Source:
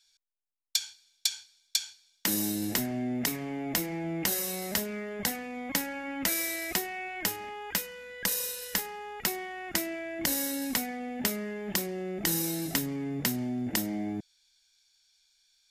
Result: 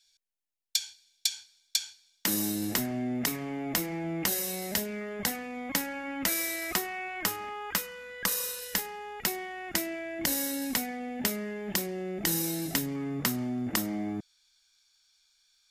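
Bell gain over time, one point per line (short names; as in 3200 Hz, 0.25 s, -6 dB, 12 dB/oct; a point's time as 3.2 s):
bell 1200 Hz 0.38 oct
-12.5 dB
from 1.37 s -2 dB
from 2.26 s +4.5 dB
from 4.28 s -4.5 dB
from 5.01 s +3 dB
from 6.62 s +10 dB
from 8.6 s 0 dB
from 12.95 s +10 dB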